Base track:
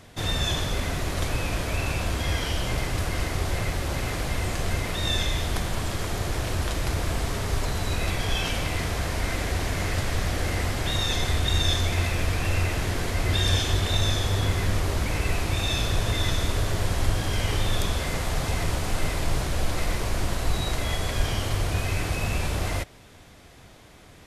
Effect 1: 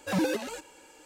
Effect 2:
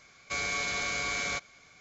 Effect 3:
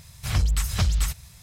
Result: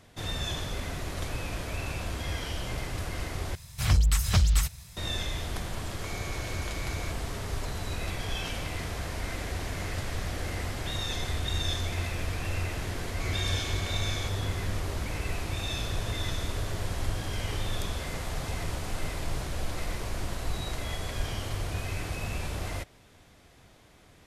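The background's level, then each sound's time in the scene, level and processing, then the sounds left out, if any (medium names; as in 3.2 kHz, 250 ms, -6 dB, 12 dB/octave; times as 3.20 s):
base track -7 dB
3.55 s: replace with 3
5.73 s: add 2 -11 dB
12.90 s: add 2 -9.5 dB
not used: 1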